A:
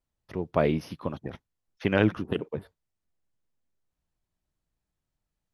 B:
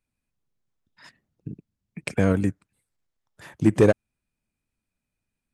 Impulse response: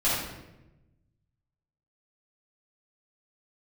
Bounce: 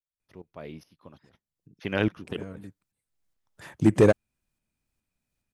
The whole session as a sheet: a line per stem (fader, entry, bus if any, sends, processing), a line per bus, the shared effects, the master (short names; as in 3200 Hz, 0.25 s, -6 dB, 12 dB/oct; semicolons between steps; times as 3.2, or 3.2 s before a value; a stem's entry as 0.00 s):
1.24 s -13.5 dB -> 1.86 s -2 dB, 0.00 s, no send, high shelf 3100 Hz +8.5 dB; tremolo saw up 2.4 Hz, depth 85%
-0.5 dB, 0.20 s, no send, auto duck -20 dB, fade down 1.10 s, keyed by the first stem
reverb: off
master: hard clip -9.5 dBFS, distortion -21 dB